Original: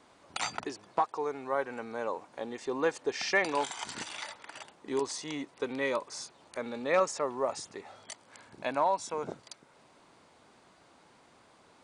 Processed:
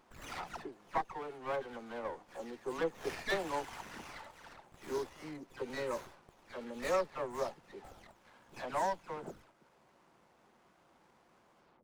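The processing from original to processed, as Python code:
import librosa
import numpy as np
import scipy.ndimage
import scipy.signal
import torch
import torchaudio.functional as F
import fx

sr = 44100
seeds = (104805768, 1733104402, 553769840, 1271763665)

y = fx.spec_delay(x, sr, highs='early', ms=252)
y = fx.running_max(y, sr, window=9)
y = F.gain(torch.from_numpy(y), -5.0).numpy()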